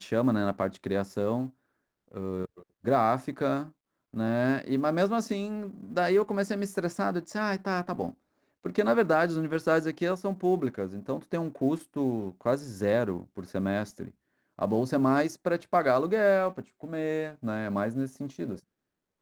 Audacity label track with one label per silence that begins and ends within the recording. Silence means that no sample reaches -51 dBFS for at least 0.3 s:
1.510000	2.080000	silence
3.710000	4.130000	silence
8.140000	8.640000	silence
14.110000	14.580000	silence